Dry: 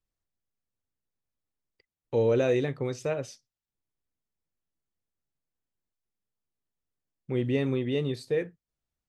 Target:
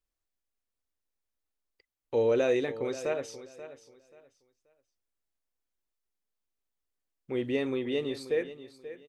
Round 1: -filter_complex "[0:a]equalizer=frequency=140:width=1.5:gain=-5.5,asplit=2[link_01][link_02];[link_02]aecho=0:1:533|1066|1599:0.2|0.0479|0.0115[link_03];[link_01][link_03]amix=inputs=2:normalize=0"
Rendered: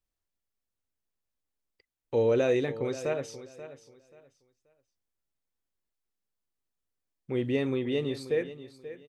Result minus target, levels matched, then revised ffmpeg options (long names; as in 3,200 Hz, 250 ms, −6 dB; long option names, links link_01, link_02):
125 Hz band +6.5 dB
-filter_complex "[0:a]equalizer=frequency=140:width=1.5:gain=-14.5,asplit=2[link_01][link_02];[link_02]aecho=0:1:533|1066|1599:0.2|0.0479|0.0115[link_03];[link_01][link_03]amix=inputs=2:normalize=0"